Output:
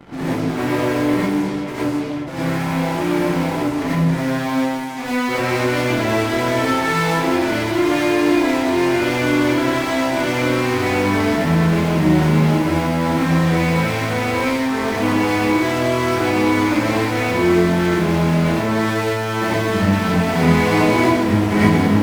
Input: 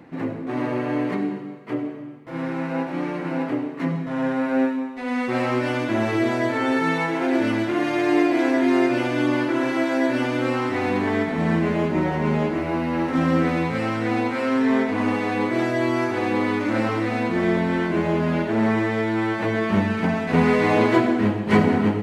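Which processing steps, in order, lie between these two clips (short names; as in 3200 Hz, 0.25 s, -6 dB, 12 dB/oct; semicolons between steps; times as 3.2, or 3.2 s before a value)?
in parallel at -10 dB: fuzz box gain 43 dB, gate -43 dBFS; on the sum: non-linear reverb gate 0.14 s rising, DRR -8 dB; gain -8.5 dB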